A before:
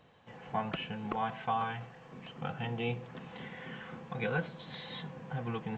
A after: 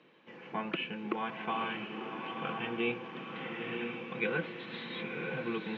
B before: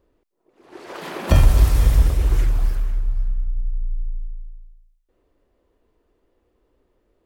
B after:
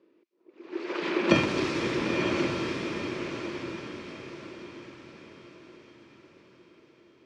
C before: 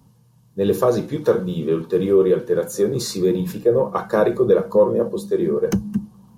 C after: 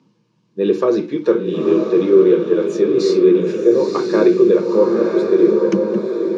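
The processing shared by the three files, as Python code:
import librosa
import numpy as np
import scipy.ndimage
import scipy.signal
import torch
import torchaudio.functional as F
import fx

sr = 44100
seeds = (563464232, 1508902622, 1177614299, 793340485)

y = fx.cabinet(x, sr, low_hz=180.0, low_slope=24, high_hz=5500.0, hz=(340.0, 740.0, 2400.0), db=(10, -9, 7))
y = fx.echo_diffused(y, sr, ms=968, feedback_pct=43, wet_db=-4)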